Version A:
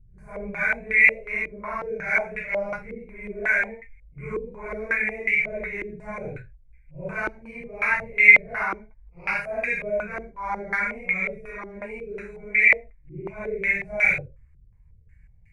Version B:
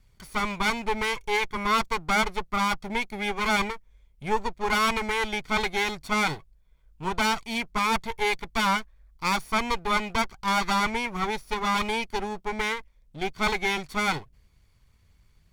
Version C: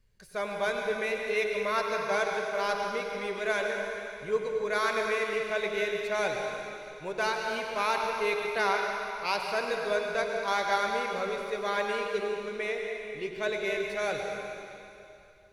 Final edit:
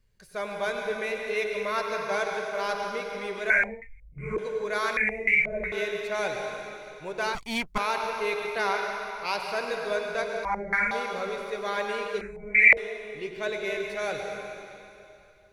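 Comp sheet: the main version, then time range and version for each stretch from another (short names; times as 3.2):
C
3.5–4.38 from A
4.97–5.72 from A
7.35–7.78 from B
10.45–10.91 from A
12.21–12.77 from A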